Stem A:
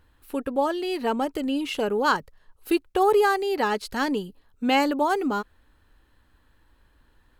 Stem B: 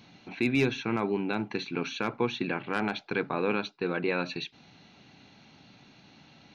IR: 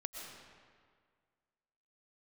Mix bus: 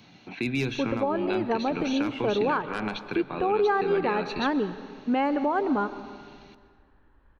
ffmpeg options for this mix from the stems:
-filter_complex "[0:a]lowpass=1700,adelay=450,volume=-2dB,asplit=2[link_01][link_02];[link_02]volume=-6.5dB[link_03];[1:a]acrossover=split=190|3000[link_04][link_05][link_06];[link_05]acompressor=threshold=-33dB:ratio=2.5[link_07];[link_04][link_07][link_06]amix=inputs=3:normalize=0,volume=-0.5dB,asplit=2[link_08][link_09];[link_09]volume=-7.5dB[link_10];[2:a]atrim=start_sample=2205[link_11];[link_03][link_10]amix=inputs=2:normalize=0[link_12];[link_12][link_11]afir=irnorm=-1:irlink=0[link_13];[link_01][link_08][link_13]amix=inputs=3:normalize=0,alimiter=limit=-16dB:level=0:latency=1:release=220"

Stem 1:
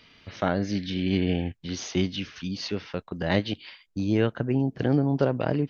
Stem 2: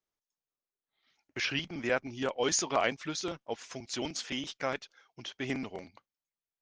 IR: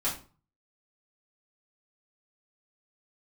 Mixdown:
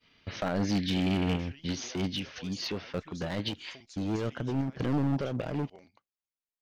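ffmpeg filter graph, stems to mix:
-filter_complex "[0:a]agate=range=-33dB:threshold=-47dB:ratio=3:detection=peak,alimiter=limit=-16.5dB:level=0:latency=1:release=94,asoftclip=type=hard:threshold=-26dB,volume=2.5dB[link_01];[1:a]acompressor=threshold=-37dB:ratio=6,alimiter=level_in=8.5dB:limit=-24dB:level=0:latency=1:release=296,volume=-8.5dB,volume=-7dB,asplit=2[link_02][link_03];[link_03]apad=whole_len=251204[link_04];[link_01][link_04]sidechaincompress=threshold=-55dB:ratio=3:attack=20:release=181[link_05];[link_05][link_02]amix=inputs=2:normalize=0"

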